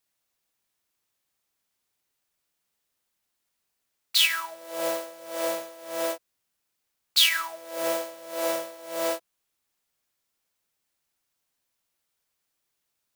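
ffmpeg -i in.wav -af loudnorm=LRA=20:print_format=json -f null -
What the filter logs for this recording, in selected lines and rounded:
"input_i" : "-26.8",
"input_tp" : "-5.3",
"input_lra" : "7.5",
"input_thresh" : "-36.8",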